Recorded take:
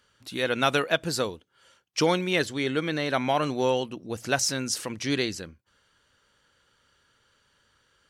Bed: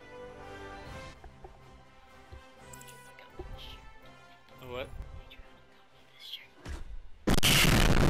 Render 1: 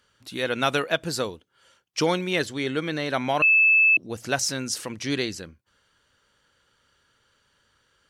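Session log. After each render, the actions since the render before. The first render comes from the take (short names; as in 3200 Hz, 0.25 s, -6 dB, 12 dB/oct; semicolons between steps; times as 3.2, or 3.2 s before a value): 3.42–3.97 bleep 2620 Hz -14 dBFS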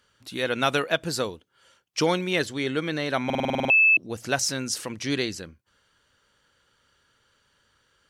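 3.25 stutter in place 0.05 s, 9 plays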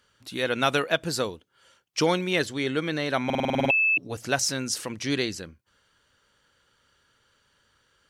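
3.55–4.17 comb 7.1 ms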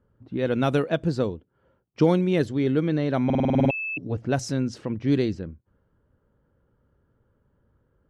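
low-pass opened by the level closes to 1100 Hz, open at -19.5 dBFS; tilt shelf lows +10 dB, about 650 Hz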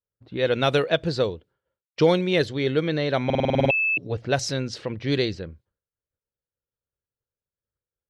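graphic EQ 250/500/2000/4000 Hz -7/+5/+5/+11 dB; expander -48 dBFS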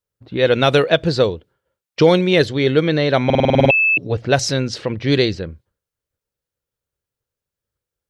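gain +7.5 dB; limiter -2 dBFS, peak gain reduction 2.5 dB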